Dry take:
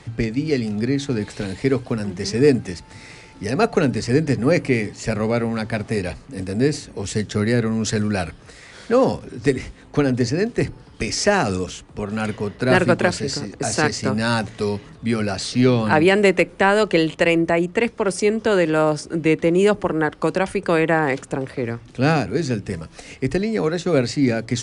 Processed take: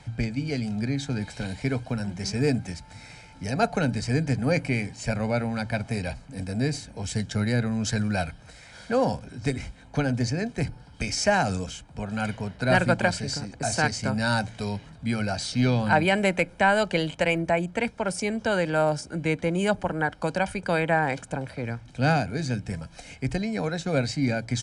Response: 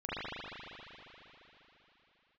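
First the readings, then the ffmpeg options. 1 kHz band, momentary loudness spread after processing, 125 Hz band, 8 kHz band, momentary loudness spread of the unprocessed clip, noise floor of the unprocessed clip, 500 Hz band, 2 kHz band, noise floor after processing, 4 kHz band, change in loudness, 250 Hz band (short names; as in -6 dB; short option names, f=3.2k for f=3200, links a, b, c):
-3.0 dB, 11 LU, -3.0 dB, -5.0 dB, 11 LU, -45 dBFS, -8.5 dB, -4.0 dB, -49 dBFS, -4.5 dB, -6.0 dB, -7.0 dB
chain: -af "aecho=1:1:1.3:0.62,volume=-6dB"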